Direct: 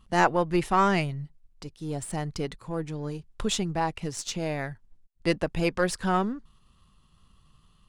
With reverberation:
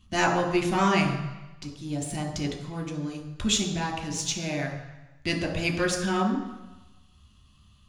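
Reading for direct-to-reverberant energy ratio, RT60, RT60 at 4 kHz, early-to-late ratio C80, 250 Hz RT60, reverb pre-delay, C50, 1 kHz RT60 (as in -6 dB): 1.5 dB, 1.0 s, 1.0 s, 9.0 dB, 0.95 s, 3 ms, 7.0 dB, 1.1 s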